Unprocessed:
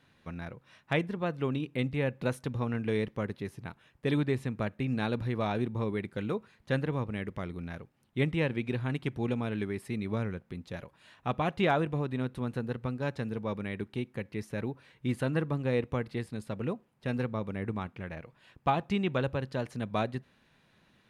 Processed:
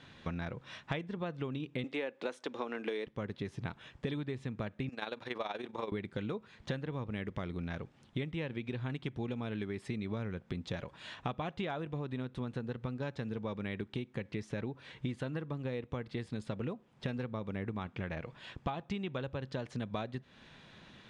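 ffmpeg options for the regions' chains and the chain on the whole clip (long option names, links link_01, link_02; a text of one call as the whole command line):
ffmpeg -i in.wav -filter_complex "[0:a]asettb=1/sr,asplit=3[link_01][link_02][link_03];[link_01]atrim=end=1.844[link_04];[link_02]atrim=start=1.84:end=3.07,asetpts=PTS-STARTPTS,afade=type=in:duration=0.004:curve=qsin,afade=type=out:start_time=1.226:duration=0.004:curve=qsin,highpass=frequency=300:width=0.5412,highpass=frequency=300:width=1.3066,acontrast=53[link_05];[link_03]atrim=start=3.066[link_06];[link_04][link_05]acrossfade=duration=0.004:curve1=hsin:curve2=qsin[link_07];[link_07][link_06]acrossfade=duration=0.004:curve1=qsin:curve2=hsin,asettb=1/sr,asplit=3[link_08][link_09][link_10];[link_08]atrim=end=4.894[link_11];[link_09]atrim=start=4.89:end=5.92,asetpts=PTS-STARTPTS,afade=type=in:duration=0.004:curve=qsin,afade=type=out:start_time=1.026:duration=0.004:curve=qsin,tremolo=f=21:d=0.71,highpass=490[link_12];[link_10]atrim=start=5.916[link_13];[link_11][link_12]acrossfade=duration=0.004:curve1=hsin:curve2=qsin[link_14];[link_14][link_13]acrossfade=duration=0.004:curve1=qsin:curve2=hsin,lowpass=frequency=7800:width=0.5412,lowpass=frequency=7800:width=1.3066,equalizer=frequency=3400:width_type=o:width=0.22:gain=5.5,acompressor=threshold=-43dB:ratio=16,volume=9dB" out.wav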